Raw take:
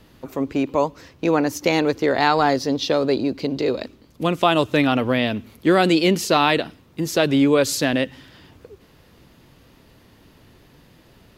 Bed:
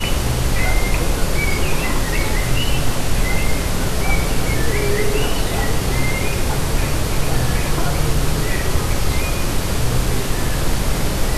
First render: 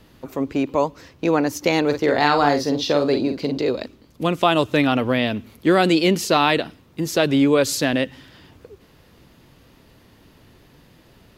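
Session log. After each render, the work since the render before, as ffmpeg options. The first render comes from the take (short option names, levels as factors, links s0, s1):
-filter_complex "[0:a]asettb=1/sr,asplit=3[s0][s1][s2];[s0]atrim=end=1.854[s3];[s1]atrim=start=1.85:end=3.58,asetpts=PTS-STARTPTS,afade=t=in:d=0.004:c=qsin,afade=t=out:st=1.726:d=0.004:c=qsin,asplit=2[s4][s5];[s5]adelay=48,volume=0.447[s6];[s4][s6]amix=inputs=2:normalize=0,atrim=end_sample=76293[s7];[s2]atrim=start=3.576[s8];[s3][s7]acrossfade=d=0.004:c1=hsin:c2=qsin[s9];[s9][s8]acrossfade=d=0.004:c1=qsin:c2=hsin"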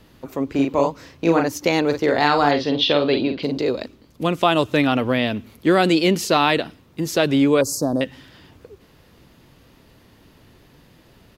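-filter_complex "[0:a]asplit=3[s0][s1][s2];[s0]afade=t=out:st=0.53:d=0.02[s3];[s1]asplit=2[s4][s5];[s5]adelay=36,volume=0.708[s6];[s4][s6]amix=inputs=2:normalize=0,afade=t=in:st=0.53:d=0.02,afade=t=out:st=1.46:d=0.02[s7];[s2]afade=t=in:st=1.46:d=0.02[s8];[s3][s7][s8]amix=inputs=3:normalize=0,asettb=1/sr,asplit=3[s9][s10][s11];[s9]atrim=end=2.514[s12];[s10]atrim=start=2.51:end=3.43,asetpts=PTS-STARTPTS,afade=t=in:d=0.004:c=qsin,afade=t=out:st=0.916:d=0.004:c=qsin,lowpass=f=3200:t=q:w=3.9[s13];[s11]atrim=start=3.426[s14];[s12][s13]acrossfade=d=0.004:c1=hsin:c2=qsin[s15];[s15][s14]acrossfade=d=0.004:c1=qsin:c2=hsin,asettb=1/sr,asplit=3[s16][s17][s18];[s16]atrim=end=7.614[s19];[s17]atrim=start=7.61:end=8.01,asetpts=PTS-STARTPTS,afade=t=in:d=0.004:c=qsin,afade=t=out:st=0.396:d=0.004:c=qsin,asuperstop=centerf=2500:order=8:qfactor=0.61[s20];[s18]atrim=start=8.006[s21];[s19][s20]acrossfade=d=0.004:c1=hsin:c2=qsin[s22];[s22][s21]acrossfade=d=0.004:c1=qsin:c2=hsin"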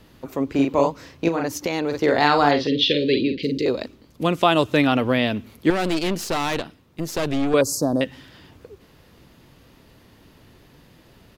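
-filter_complex "[0:a]asettb=1/sr,asplit=3[s0][s1][s2];[s0]atrim=end=1.284[s3];[s1]atrim=start=1.28:end=1.96,asetpts=PTS-STARTPTS,afade=t=in:d=0.004:c=qsin,afade=t=out:st=0.676:d=0.004:c=qsin,acompressor=threshold=0.112:ratio=6:attack=3.2:release=140:knee=1:detection=peak[s4];[s2]atrim=start=1.956[s5];[s3][s4]acrossfade=d=0.004:c1=hsin:c2=qsin[s6];[s6][s5]acrossfade=d=0.004:c1=qsin:c2=hsin,asettb=1/sr,asplit=3[s7][s8][s9];[s7]atrim=end=2.674[s10];[s8]atrim=start=2.67:end=3.66,asetpts=PTS-STARTPTS,afade=t=in:d=0.004:c=qsin,afade=t=out:st=0.986:d=0.004:c=qsin,asuperstop=centerf=960:order=12:qfactor=0.77[s11];[s9]atrim=start=3.656[s12];[s10][s11]acrossfade=d=0.004:c1=hsin:c2=qsin[s13];[s13][s12]acrossfade=d=0.004:c1=qsin:c2=hsin,asettb=1/sr,asplit=3[s14][s15][s16];[s14]atrim=end=5.704[s17];[s15]atrim=start=5.7:end=7.54,asetpts=PTS-STARTPTS,afade=t=in:d=0.004:c=qsin,afade=t=out:st=1.836:d=0.004:c=qsin,aeval=exprs='(tanh(8.91*val(0)+0.75)-tanh(0.75))/8.91':c=same[s18];[s16]atrim=start=7.536[s19];[s17][s18]acrossfade=d=0.004:c1=hsin:c2=qsin[s20];[s20][s19]acrossfade=d=0.004:c1=qsin:c2=hsin"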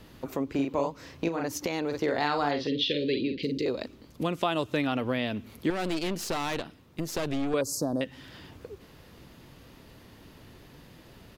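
-af "acompressor=threshold=0.0251:ratio=2"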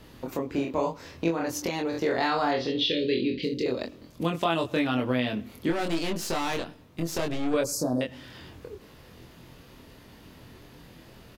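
-filter_complex "[0:a]asplit=2[s0][s1];[s1]adelay=24,volume=0.708[s2];[s0][s2]amix=inputs=2:normalize=0,asplit=2[s3][s4];[s4]adelay=105,lowpass=f=2700:p=1,volume=0.0708,asplit=2[s5][s6];[s6]adelay=105,lowpass=f=2700:p=1,volume=0.45,asplit=2[s7][s8];[s8]adelay=105,lowpass=f=2700:p=1,volume=0.45[s9];[s3][s5][s7][s9]amix=inputs=4:normalize=0"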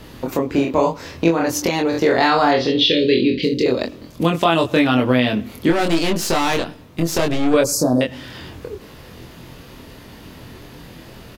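-af "volume=3.35,alimiter=limit=0.794:level=0:latency=1"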